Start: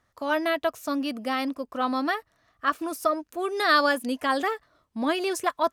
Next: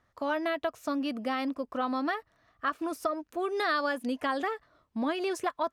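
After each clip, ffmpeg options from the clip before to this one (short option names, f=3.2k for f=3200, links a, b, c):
-af "lowpass=f=3.6k:p=1,acompressor=threshold=-28dB:ratio=3"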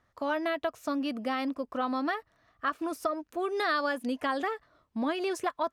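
-af anull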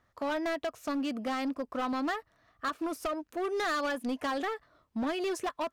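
-af "asoftclip=type=hard:threshold=-28dB"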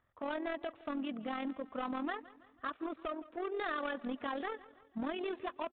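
-af "tremolo=f=42:d=0.571,aecho=1:1:164|328|492|656:0.112|0.0539|0.0259|0.0124,aresample=8000,aresample=44100,volume=-3.5dB"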